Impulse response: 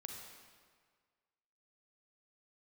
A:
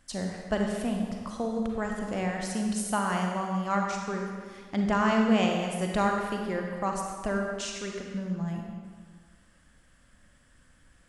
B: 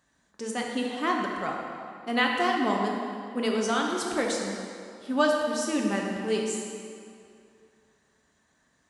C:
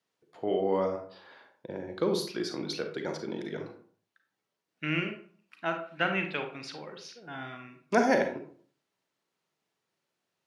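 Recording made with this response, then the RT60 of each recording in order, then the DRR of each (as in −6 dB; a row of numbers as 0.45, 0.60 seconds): A; 1.7, 2.5, 0.50 seconds; 1.0, −1.0, 4.5 decibels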